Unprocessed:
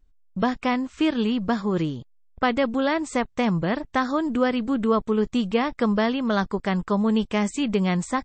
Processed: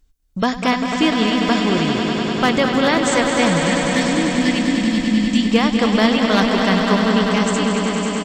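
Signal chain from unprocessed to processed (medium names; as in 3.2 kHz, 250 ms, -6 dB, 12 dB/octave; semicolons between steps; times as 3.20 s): fade out at the end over 1.32 s; treble shelf 3.1 kHz +12 dB; delay 225 ms -9.5 dB; one-sided clip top -14 dBFS, bottom -10.5 dBFS; time-frequency box 3.49–5.45 s, 370–1700 Hz -29 dB; echo with a slow build-up 99 ms, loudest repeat 5, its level -8.5 dB; trim +3.5 dB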